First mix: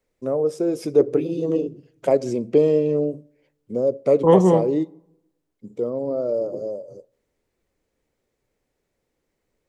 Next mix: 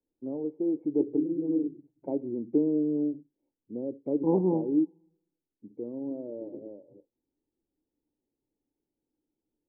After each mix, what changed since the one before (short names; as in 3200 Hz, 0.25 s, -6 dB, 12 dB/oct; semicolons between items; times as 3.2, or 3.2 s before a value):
first voice: send off; master: add vocal tract filter u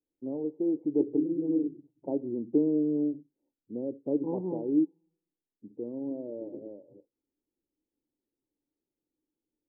first voice: add polynomial smoothing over 65 samples; second voice -8.5 dB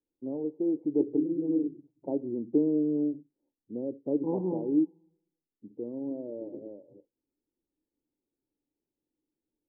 second voice: send +8.5 dB